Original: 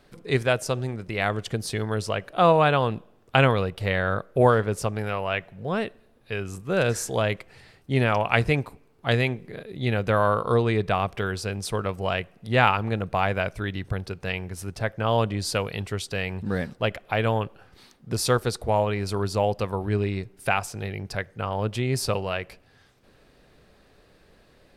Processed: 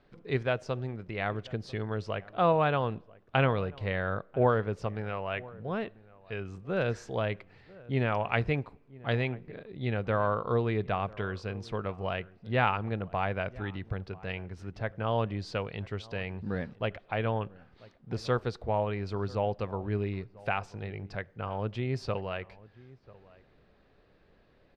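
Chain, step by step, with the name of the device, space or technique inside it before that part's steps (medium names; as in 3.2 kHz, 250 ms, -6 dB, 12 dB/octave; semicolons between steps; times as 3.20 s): shout across a valley (distance through air 200 m; echo from a far wall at 170 m, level -21 dB); trim -6 dB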